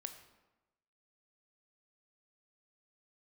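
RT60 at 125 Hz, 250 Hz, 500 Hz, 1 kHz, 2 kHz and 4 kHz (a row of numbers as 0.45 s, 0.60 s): 1.0 s, 1.1 s, 1.1 s, 1.1 s, 0.90 s, 0.70 s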